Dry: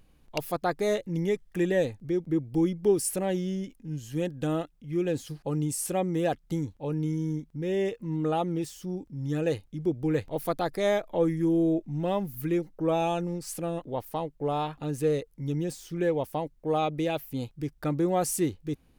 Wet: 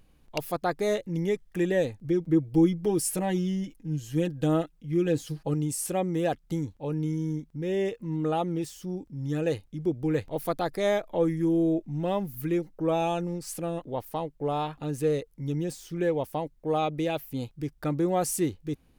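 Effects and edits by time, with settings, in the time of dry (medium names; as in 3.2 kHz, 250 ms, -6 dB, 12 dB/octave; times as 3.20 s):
2.04–5.54 s: comb 6.3 ms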